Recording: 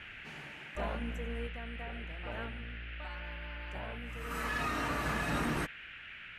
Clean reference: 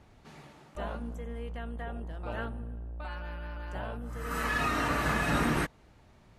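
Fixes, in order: clip repair -27 dBFS; noise print and reduce 9 dB; trim 0 dB, from 1.47 s +5 dB

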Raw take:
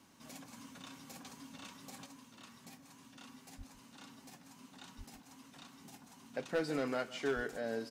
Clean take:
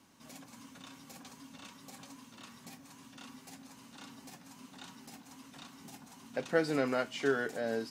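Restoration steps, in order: clip repair -27.5 dBFS; 3.57–3.69 s: high-pass 140 Hz 24 dB/octave; 4.97–5.09 s: high-pass 140 Hz 24 dB/octave; 7.35–7.47 s: high-pass 140 Hz 24 dB/octave; inverse comb 157 ms -18 dB; trim 0 dB, from 2.06 s +4 dB

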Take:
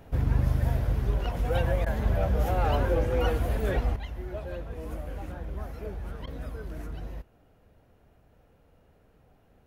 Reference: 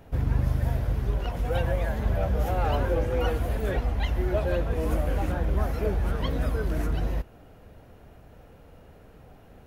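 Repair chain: interpolate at 1.85/6.26 s, 11 ms; trim 0 dB, from 3.96 s +10.5 dB

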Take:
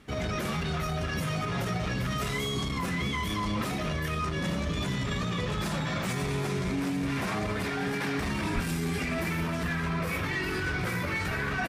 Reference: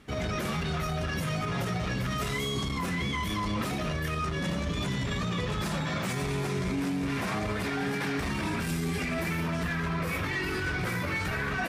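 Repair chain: 8.54–8.66 s: high-pass 140 Hz 24 dB/octave; inverse comb 842 ms -14 dB

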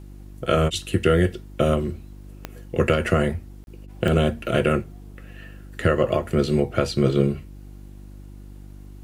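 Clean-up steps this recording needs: de-click; de-hum 49.4 Hz, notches 7; interpolate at 3.64 s, 31 ms

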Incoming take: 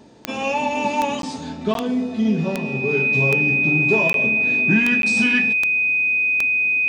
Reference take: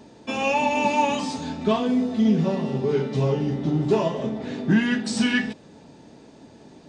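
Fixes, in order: de-click; band-stop 2.5 kHz, Q 30; interpolate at 1.22/1.74/4.13/5.02 s, 12 ms

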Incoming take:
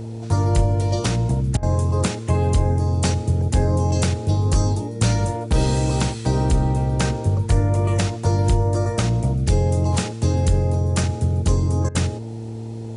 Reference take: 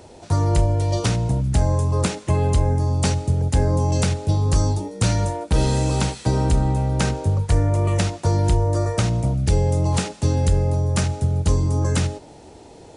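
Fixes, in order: de-hum 112.8 Hz, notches 4; interpolate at 1.57/11.89 s, 57 ms

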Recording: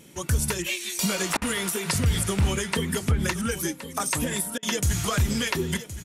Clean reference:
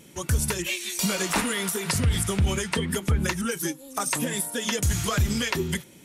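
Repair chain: interpolate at 1.37/4.58 s, 46 ms; inverse comb 1069 ms -13.5 dB

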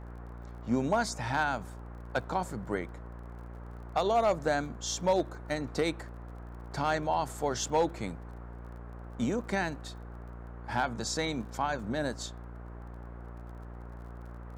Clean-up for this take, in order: clip repair -19 dBFS; de-click; de-hum 58.9 Hz, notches 19; noise print and reduce 30 dB

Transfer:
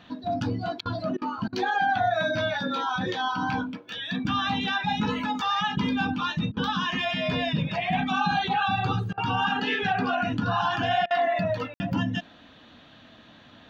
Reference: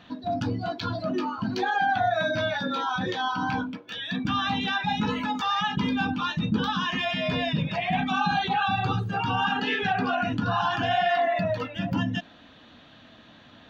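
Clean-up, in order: room tone fill 11.74–11.80 s; interpolate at 0.81/1.17/1.48/6.52/9.13/11.06 s, 45 ms

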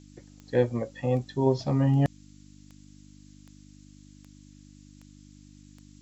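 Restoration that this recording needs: de-click; de-hum 49.9 Hz, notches 6; noise print and reduce 20 dB

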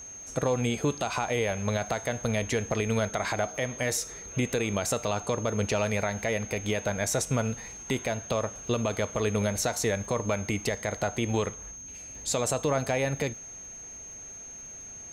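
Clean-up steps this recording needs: de-click; band-stop 6.4 kHz, Q 30

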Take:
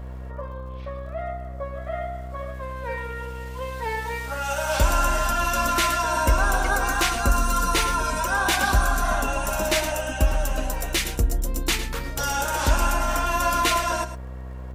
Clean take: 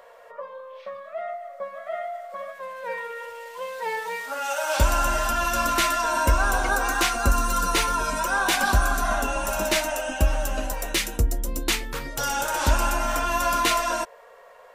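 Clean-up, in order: de-click; de-hum 63.8 Hz, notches 27; inverse comb 108 ms -12 dB

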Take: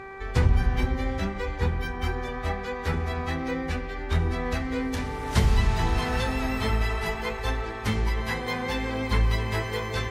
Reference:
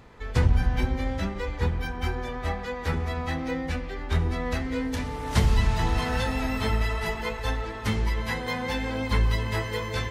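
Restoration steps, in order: de-hum 388.5 Hz, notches 6

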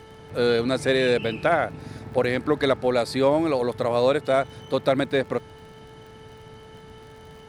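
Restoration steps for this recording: de-click; de-hum 439.2 Hz, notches 5

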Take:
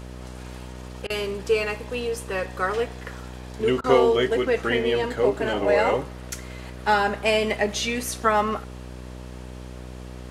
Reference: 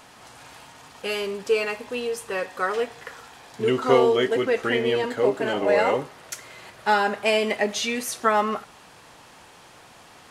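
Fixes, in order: de-hum 62.3 Hz, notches 10; interpolate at 1.07/3.81 s, 29 ms

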